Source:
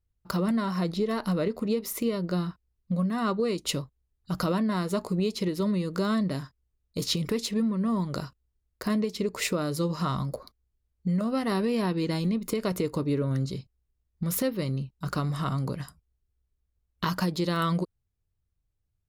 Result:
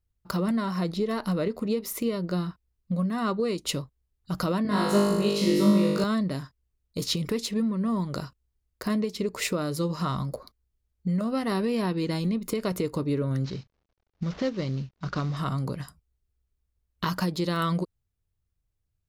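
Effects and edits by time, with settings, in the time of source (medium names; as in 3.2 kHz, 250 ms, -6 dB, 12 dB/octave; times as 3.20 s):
4.63–6.04 s: flutter echo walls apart 3.4 m, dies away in 1.2 s
13.44–15.37 s: CVSD coder 32 kbps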